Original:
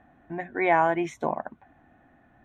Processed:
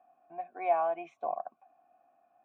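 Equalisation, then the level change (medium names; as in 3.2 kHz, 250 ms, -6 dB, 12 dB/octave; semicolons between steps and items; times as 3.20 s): vowel filter a; high-pass 100 Hz; 0.0 dB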